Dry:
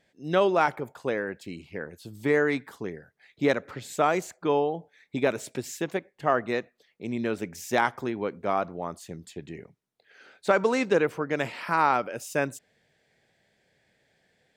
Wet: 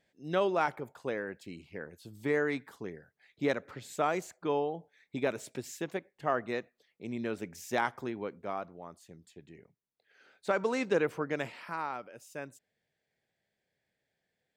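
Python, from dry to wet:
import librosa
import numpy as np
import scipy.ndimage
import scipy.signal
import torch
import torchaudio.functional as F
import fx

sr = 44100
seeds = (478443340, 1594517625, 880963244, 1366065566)

y = fx.gain(x, sr, db=fx.line((8.12, -6.5), (8.8, -13.0), (9.51, -13.0), (11.24, -4.0), (11.89, -15.0)))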